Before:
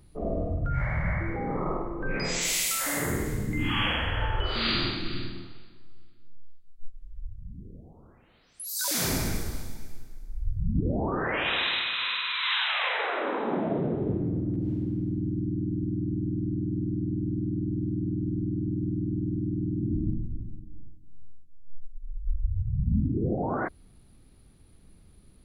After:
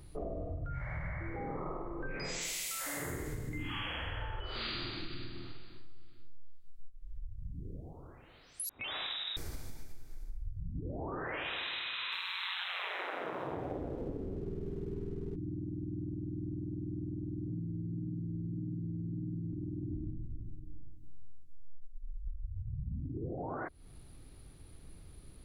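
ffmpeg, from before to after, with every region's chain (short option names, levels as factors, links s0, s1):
-filter_complex "[0:a]asettb=1/sr,asplit=3[s0][s1][s2];[s0]atrim=end=8.694[s3];[s1]atrim=start=8.69:end=9.37,asetpts=PTS-STARTPTS,afade=t=in:d=0.004:c=qsin,afade=t=out:st=0.676:d=0.004:c=qsin,equalizer=f=2900:t=o:w=0.29:g=9,aeval=exprs='val(0)*sin(2*PI*170*n/s)':c=same,lowpass=f=3300:t=q:w=0.5098,lowpass=f=3300:t=q:w=0.6013,lowpass=f=3300:t=q:w=0.9,lowpass=f=3300:t=q:w=2.563,afreqshift=-3900[s4];[s2]atrim=start=9.366[s5];[s3][s4]acrossfade=d=0.004:c1=hsin:c2=qsin[s6];[s6][s5]acrossfade=d=0.004:c1=qsin:c2=hsin,asettb=1/sr,asplit=3[s7][s8][s9];[s7]atrim=end=12.124[s10];[s8]atrim=start=12.12:end=15.36,asetpts=PTS-STARTPTS,afade=t=in:d=0.004:c=qsin,afade=t=out:st=3.236:d=0.004:c=qsin,acontrast=68,aeval=exprs='val(0)*sin(2*PI*90*n/s)':c=same,aeval=exprs='sgn(val(0))*max(abs(val(0))-0.00282,0)':c=same[s11];[s9]atrim=start=15.356[s12];[s10][s11]acrossfade=d=0.004:c1=hsin:c2=qsin[s13];[s13][s12]acrossfade=d=0.004:c1=qsin:c2=hsin,asettb=1/sr,asplit=3[s14][s15][s16];[s14]atrim=end=17.484[s17];[s15]atrim=start=17.48:end=19.53,asetpts=PTS-STARTPTS,afade=t=in:d=0.004:c=qsin,afade=t=out:st=2.046:d=0.004:c=qsin,equalizer=f=150:t=o:w=0.63:g=8.5,asplit=2[s18][s19];[s19]adelay=36,volume=0.447[s20];[s18][s20]amix=inputs=2:normalize=0,atrim=end_sample=90405,flanger=delay=16.5:depth=2.1:speed=1.7[s21];[s16]atrim=start=19.526[s22];[s17][s21]acrossfade=d=0.004:c1=hsin:c2=qsin[s23];[s23][s22]acrossfade=d=0.004:c1=qsin:c2=hsin,equalizer=f=210:t=o:w=0.25:g=-12,acompressor=threshold=0.01:ratio=6,volume=1.41"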